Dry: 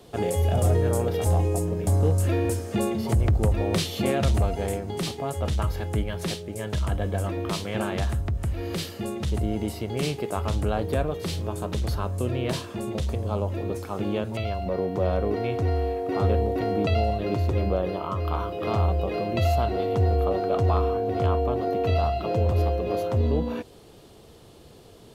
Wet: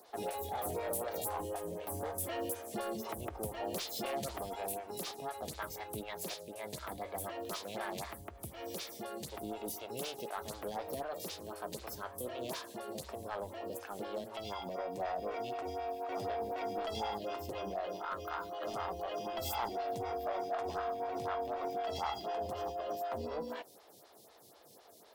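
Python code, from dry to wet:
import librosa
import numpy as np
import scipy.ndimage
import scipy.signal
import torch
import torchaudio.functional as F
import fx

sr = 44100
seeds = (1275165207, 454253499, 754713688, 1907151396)

y = fx.highpass(x, sr, hz=520.0, slope=6)
y = fx.high_shelf(y, sr, hz=6300.0, db=9.0)
y = 10.0 ** (-25.0 / 20.0) * np.tanh(y / 10.0 ** (-25.0 / 20.0))
y = fx.formant_shift(y, sr, semitones=3)
y = fx.stagger_phaser(y, sr, hz=4.0)
y = F.gain(torch.from_numpy(y), -4.0).numpy()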